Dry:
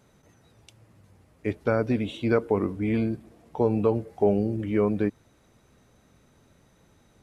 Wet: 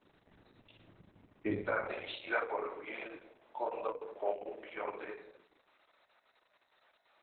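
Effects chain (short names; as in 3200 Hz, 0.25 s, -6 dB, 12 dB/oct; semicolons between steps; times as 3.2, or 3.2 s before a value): HPF 130 Hz 24 dB/oct, from 1.57 s 590 Hz; chorus 2.9 Hz, delay 18 ms, depth 3.9 ms; shoebox room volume 2700 m³, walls furnished, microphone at 2.7 m; gain -2 dB; Opus 6 kbps 48000 Hz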